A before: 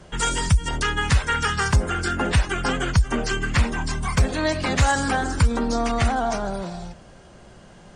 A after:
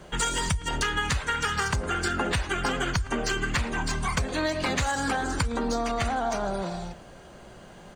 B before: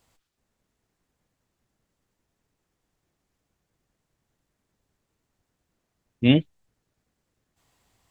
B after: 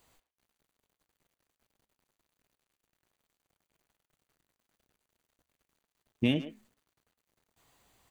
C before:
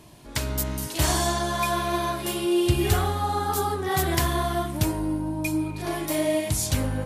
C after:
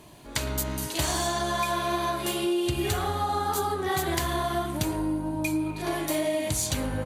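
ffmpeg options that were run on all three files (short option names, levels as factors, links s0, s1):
-filter_complex "[0:a]asplit=2[s0][s1];[s1]adynamicsmooth=sensitivity=4.5:basefreq=5100,volume=1[s2];[s0][s2]amix=inputs=2:normalize=0,bass=f=250:g=-4,treble=f=4000:g=5,acrusher=bits=10:mix=0:aa=0.000001,flanger=delay=4.6:depth=2.5:regen=-89:speed=1.9:shape=sinusoidal,bandreject=f=5300:w=10,asplit=2[s3][s4];[s4]adelay=110,highpass=300,lowpass=3400,asoftclip=type=hard:threshold=0.237,volume=0.158[s5];[s3][s5]amix=inputs=2:normalize=0,acompressor=threshold=0.0708:ratio=10"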